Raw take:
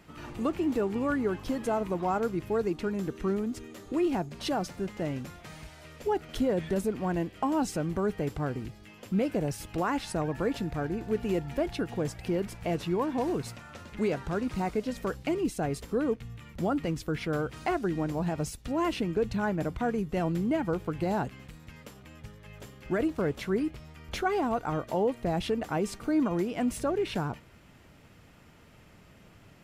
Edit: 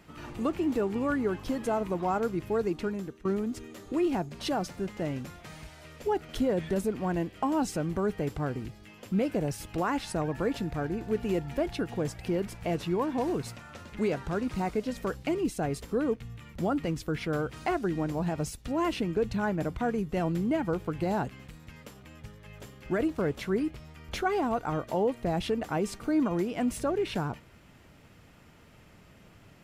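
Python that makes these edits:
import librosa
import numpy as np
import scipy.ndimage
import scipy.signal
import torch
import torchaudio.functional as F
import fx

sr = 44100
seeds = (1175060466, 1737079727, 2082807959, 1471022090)

y = fx.edit(x, sr, fx.fade_out_to(start_s=2.85, length_s=0.4, floor_db=-18.0), tone=tone)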